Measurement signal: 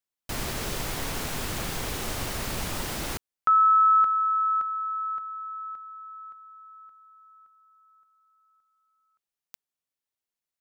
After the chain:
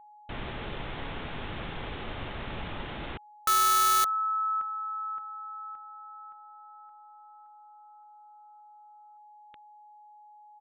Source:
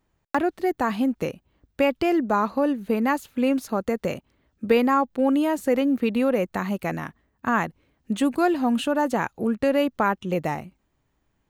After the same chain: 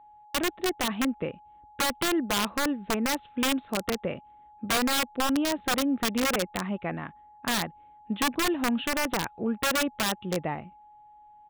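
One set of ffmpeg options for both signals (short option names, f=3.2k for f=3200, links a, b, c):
-af "aeval=exprs='val(0)+0.00501*sin(2*PI*840*n/s)':c=same,aresample=8000,aresample=44100,aeval=exprs='(mod(5.62*val(0)+1,2)-1)/5.62':c=same,volume=-4.5dB"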